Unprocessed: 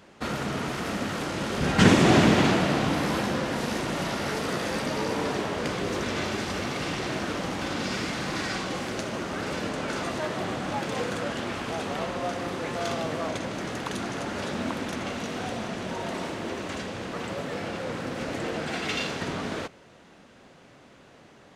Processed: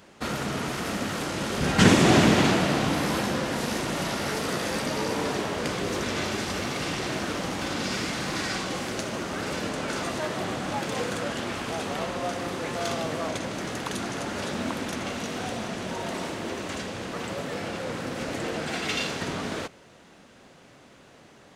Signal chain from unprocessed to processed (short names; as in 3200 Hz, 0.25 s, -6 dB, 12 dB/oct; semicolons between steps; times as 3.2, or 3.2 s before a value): high shelf 5800 Hz +6.5 dB